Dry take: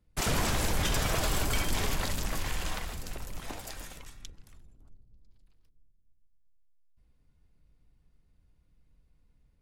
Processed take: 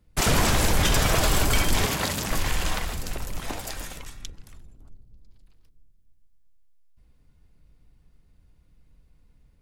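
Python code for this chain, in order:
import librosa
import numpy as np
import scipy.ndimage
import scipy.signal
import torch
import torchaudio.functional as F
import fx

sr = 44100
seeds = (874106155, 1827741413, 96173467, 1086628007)

y = fx.highpass(x, sr, hz=97.0, slope=12, at=(1.85, 2.31))
y = y * librosa.db_to_amplitude(7.5)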